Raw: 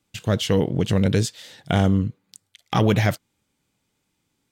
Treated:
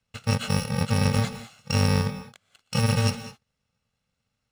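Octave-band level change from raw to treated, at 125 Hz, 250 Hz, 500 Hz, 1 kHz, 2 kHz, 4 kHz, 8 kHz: −2.0, −5.5, −7.5, −3.5, −1.5, −1.5, +0.5 decibels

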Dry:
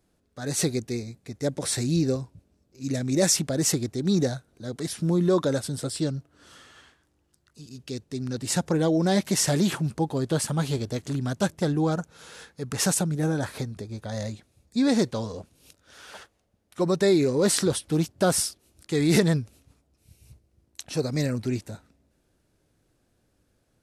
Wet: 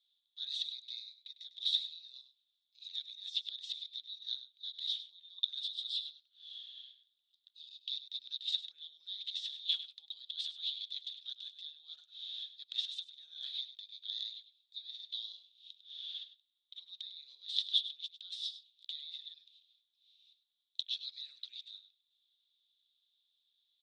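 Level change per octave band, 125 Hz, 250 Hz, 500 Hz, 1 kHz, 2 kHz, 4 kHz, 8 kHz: below −40 dB, below −40 dB, below −40 dB, below −40 dB, −26.5 dB, −0.5 dB, below −30 dB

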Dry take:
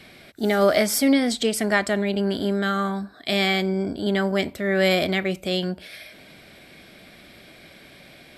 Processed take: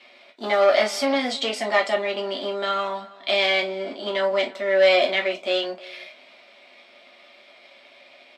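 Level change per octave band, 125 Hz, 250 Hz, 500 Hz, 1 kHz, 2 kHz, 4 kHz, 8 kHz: below −15 dB, −10.5 dB, +2.0 dB, +2.5 dB, +1.0 dB, +2.0 dB, can't be measured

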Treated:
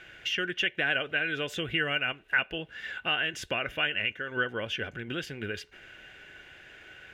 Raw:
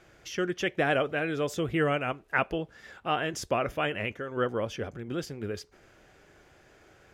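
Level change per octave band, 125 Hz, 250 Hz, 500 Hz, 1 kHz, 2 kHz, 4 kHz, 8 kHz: −5.5, −6.0, −6.5, −6.0, +5.0, +8.0, −4.0 decibels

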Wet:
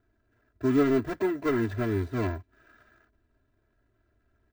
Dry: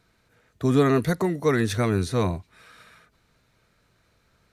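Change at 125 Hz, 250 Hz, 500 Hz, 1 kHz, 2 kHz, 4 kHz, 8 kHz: −7.5 dB, −2.5 dB, −4.0 dB, −6.5 dB, −5.0 dB, −11.0 dB, below −15 dB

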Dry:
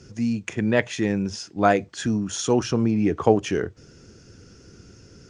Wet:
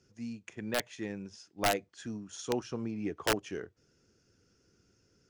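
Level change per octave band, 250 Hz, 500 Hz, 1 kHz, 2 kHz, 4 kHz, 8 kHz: −15.5, −13.0, −11.5, −9.0, −5.5, −9.0 decibels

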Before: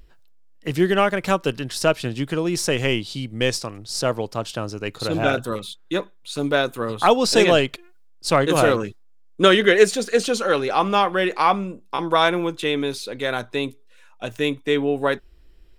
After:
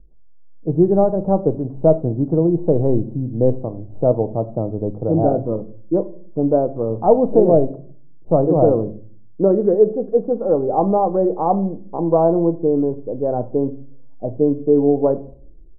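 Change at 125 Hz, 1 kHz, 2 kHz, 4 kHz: +6.5 dB, −1.5 dB, below −30 dB, below −40 dB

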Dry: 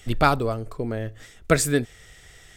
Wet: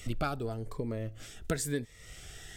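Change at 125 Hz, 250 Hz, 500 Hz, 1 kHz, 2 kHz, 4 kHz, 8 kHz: −9.5, −10.0, −12.0, −15.5, −14.5, −11.0, −10.5 decibels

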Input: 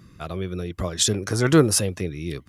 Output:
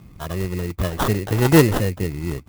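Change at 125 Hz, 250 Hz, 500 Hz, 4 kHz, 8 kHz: +4.5, +3.0, +2.5, −4.5, −8.5 decibels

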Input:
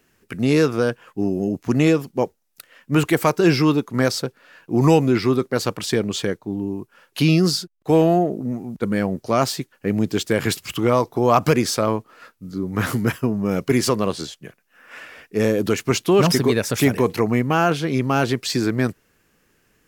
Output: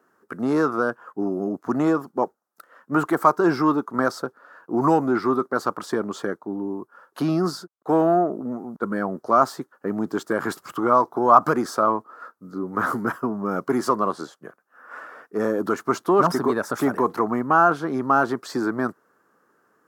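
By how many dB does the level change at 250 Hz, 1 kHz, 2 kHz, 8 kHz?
−4.0, +4.0, −2.5, −12.0 decibels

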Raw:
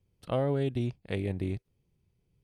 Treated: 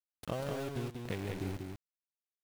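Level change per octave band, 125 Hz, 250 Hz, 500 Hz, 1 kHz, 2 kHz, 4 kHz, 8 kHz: −8.0 dB, −7.0 dB, −7.5 dB, −4.0 dB, −2.0 dB, −1.5 dB, can't be measured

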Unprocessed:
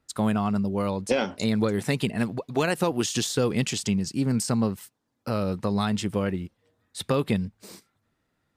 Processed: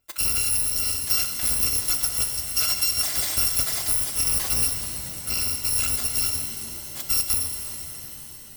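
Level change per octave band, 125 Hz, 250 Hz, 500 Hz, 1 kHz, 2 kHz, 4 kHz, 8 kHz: −9.5, −19.0, −17.0, −7.5, −0.5, +8.0, +12.5 decibels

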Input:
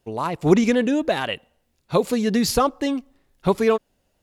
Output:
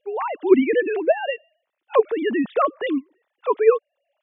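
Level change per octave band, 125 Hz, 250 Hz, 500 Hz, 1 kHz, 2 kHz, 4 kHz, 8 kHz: below −20 dB, −3.0 dB, +3.0 dB, 0.0 dB, +0.5 dB, −9.0 dB, below −40 dB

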